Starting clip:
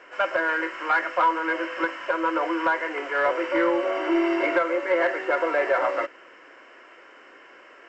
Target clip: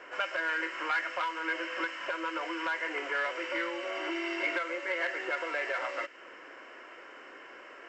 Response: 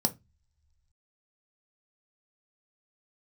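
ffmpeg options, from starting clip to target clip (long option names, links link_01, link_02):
-filter_complex "[0:a]acrossover=split=1900[link_01][link_02];[link_01]acompressor=threshold=-35dB:ratio=10[link_03];[link_03][link_02]amix=inputs=2:normalize=0"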